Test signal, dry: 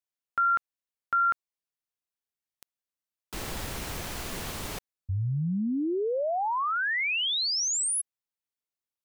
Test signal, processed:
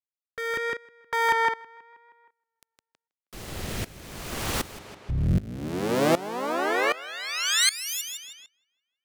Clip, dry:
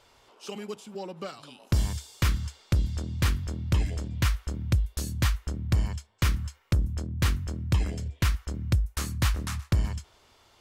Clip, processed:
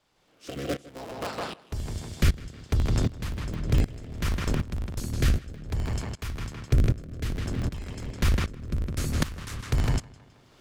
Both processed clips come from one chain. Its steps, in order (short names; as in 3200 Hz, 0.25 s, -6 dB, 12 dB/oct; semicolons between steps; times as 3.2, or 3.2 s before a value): cycle switcher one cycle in 3, inverted; in parallel at -2.5 dB: limiter -24.5 dBFS; on the sum: requantised 12-bit, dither none; rotary speaker horn 0.6 Hz; on a send: tape echo 0.159 s, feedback 45%, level -3 dB, low-pass 4100 Hz; on the sum: dB-ramp tremolo swelling 1.3 Hz, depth 19 dB; gain +5 dB